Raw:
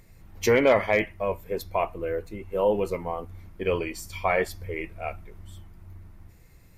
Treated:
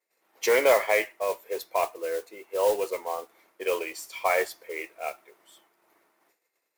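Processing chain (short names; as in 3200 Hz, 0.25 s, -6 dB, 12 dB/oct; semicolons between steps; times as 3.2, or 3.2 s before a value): expander -42 dBFS; HPF 410 Hz 24 dB/oct; modulation noise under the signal 16 dB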